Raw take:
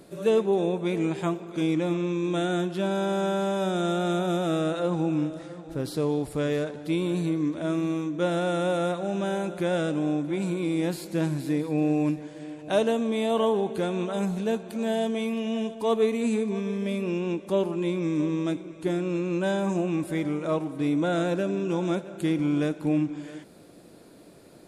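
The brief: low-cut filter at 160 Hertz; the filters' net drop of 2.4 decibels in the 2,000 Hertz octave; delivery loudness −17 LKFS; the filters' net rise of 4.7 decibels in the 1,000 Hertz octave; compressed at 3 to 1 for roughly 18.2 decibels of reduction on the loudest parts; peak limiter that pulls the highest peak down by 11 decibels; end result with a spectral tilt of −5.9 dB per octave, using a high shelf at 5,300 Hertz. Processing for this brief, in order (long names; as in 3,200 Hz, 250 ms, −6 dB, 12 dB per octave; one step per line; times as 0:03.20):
high-pass filter 160 Hz
parametric band 1,000 Hz +8.5 dB
parametric band 2,000 Hz −8.5 dB
high-shelf EQ 5,300 Hz +6 dB
downward compressor 3 to 1, threshold −43 dBFS
level +28 dB
brickwall limiter −9 dBFS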